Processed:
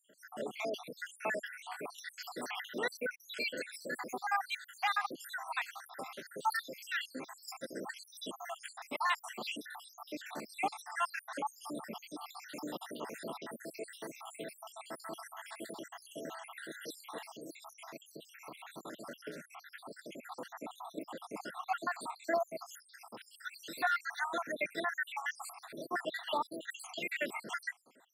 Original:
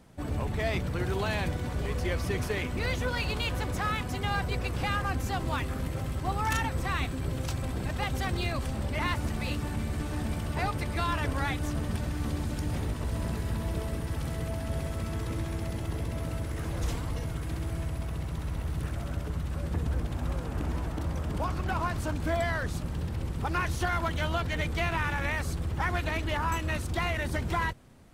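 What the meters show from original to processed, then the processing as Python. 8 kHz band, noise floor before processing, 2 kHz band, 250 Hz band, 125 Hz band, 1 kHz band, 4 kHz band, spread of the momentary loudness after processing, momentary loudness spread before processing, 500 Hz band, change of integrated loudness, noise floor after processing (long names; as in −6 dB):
−5.5 dB, −36 dBFS, −4.5 dB, −12.5 dB, −32.5 dB, −4.5 dB, −5.5 dB, 14 LU, 5 LU, −6.5 dB, −8.0 dB, −64 dBFS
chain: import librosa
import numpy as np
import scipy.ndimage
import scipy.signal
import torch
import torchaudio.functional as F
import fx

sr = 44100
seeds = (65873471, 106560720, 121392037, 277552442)

y = fx.spec_dropout(x, sr, seeds[0], share_pct=78)
y = scipy.signal.sosfilt(scipy.signal.bessel(6, 380.0, 'highpass', norm='mag', fs=sr, output='sos'), y)
y = F.gain(torch.from_numpy(y), 2.0).numpy()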